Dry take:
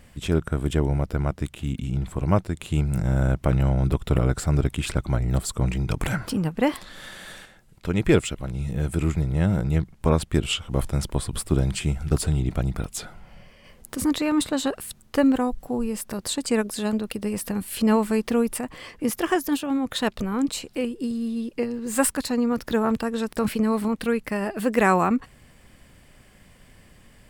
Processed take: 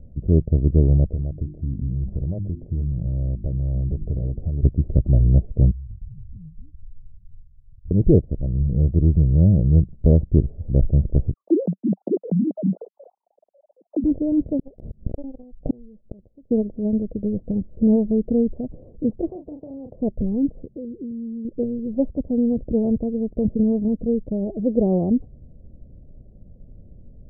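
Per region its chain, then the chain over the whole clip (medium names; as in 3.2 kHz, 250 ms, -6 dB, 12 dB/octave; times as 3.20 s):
1.09–4.63 s: hum notches 50/100/150/200/250/300/350 Hz + compression 5:1, threshold -28 dBFS
5.71–7.91 s: inverse Chebyshev low-pass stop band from 620 Hz, stop band 80 dB + compression, threshold -42 dBFS
11.33–14.04 s: formants replaced by sine waves + Chebyshev high-pass 190 Hz, order 4
14.59–16.51 s: inverted gate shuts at -22 dBFS, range -39 dB + waveshaping leveller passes 5 + level flattener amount 50%
19.30–19.94 s: high-pass 970 Hz 6 dB/octave + doubling 33 ms -9 dB + spectrum-flattening compressor 2:1
20.65–21.45 s: comb of notches 730 Hz + compression 3:1, threshold -34 dBFS
whole clip: steep low-pass 630 Hz 48 dB/octave; bass shelf 150 Hz +12 dB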